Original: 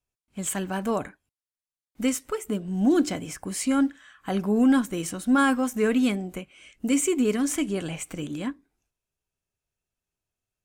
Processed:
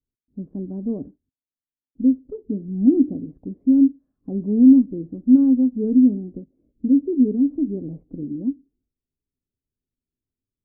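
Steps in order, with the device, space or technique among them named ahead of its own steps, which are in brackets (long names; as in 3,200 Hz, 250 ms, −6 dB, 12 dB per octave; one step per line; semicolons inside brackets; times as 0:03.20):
under water (low-pass filter 420 Hz 24 dB per octave; parametric band 260 Hz +9.5 dB 0.38 octaves)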